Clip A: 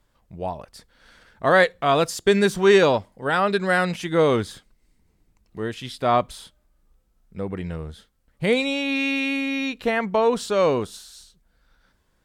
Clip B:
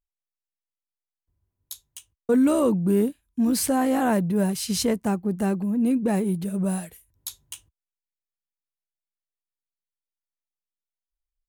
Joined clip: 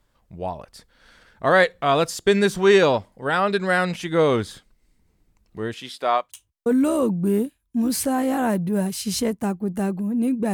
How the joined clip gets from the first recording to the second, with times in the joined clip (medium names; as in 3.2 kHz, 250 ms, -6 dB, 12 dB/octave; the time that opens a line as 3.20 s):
clip A
5.73–6.32 s: high-pass 180 Hz -> 870 Hz
6.24 s: go over to clip B from 1.87 s, crossfade 0.16 s